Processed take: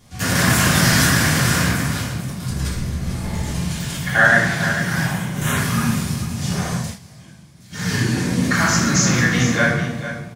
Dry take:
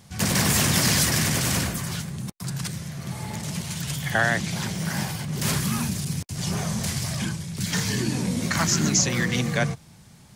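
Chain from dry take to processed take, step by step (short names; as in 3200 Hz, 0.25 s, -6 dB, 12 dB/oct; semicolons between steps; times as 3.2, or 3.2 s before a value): 2.48–3.51 octaver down 1 oct, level 0 dB; 5.03–5.57 Butterworth band-stop 4800 Hz, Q 2.4; echo 0.447 s -10.5 dB; reverb RT60 1.1 s, pre-delay 3 ms, DRR -8 dB; 6.74–7.95 dip -20 dB, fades 0.25 s; dynamic EQ 1500 Hz, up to +8 dB, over -36 dBFS, Q 2.2; gain -4.5 dB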